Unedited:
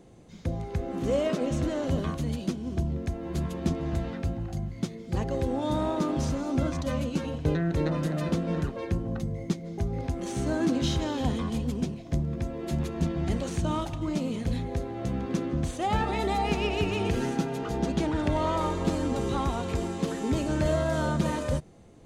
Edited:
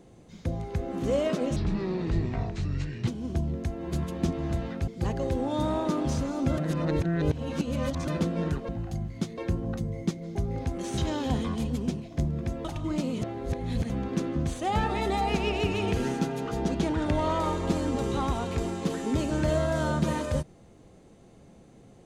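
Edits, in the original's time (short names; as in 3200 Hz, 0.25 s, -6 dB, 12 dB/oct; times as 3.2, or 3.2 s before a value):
1.56–2.5 speed 62%
4.3–4.99 move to 8.8
6.69–8.19 reverse
10.4–10.92 cut
12.59–13.82 cut
14.39–15.07 reverse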